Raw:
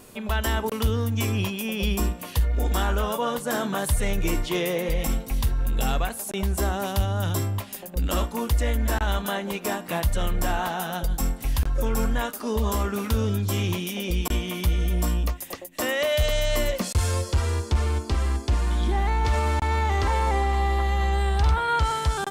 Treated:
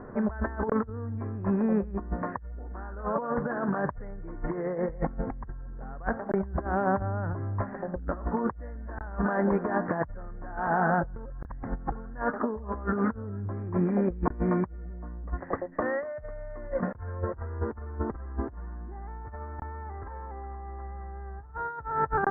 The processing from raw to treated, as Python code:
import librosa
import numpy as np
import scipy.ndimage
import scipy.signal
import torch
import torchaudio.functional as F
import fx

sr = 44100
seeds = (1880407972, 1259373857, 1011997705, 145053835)

y = fx.highpass(x, sr, hz=92.0, slope=12, at=(6.65, 7.33))
y = fx.edit(y, sr, fx.reverse_span(start_s=11.16, length_s=0.76), tone=tone)
y = scipy.signal.sosfilt(scipy.signal.butter(12, 1800.0, 'lowpass', fs=sr, output='sos'), y)
y = fx.over_compress(y, sr, threshold_db=-30.0, ratio=-0.5)